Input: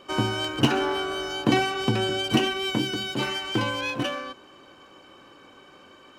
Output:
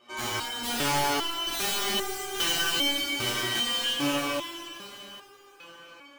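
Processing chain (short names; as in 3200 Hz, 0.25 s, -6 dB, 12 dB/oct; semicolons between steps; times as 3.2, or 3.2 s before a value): low shelf 470 Hz -10 dB; wrapped overs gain 21 dB; plate-style reverb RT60 4 s, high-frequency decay 0.9×, DRR -9.5 dB; stepped resonator 2.5 Hz 120–400 Hz; gain +4.5 dB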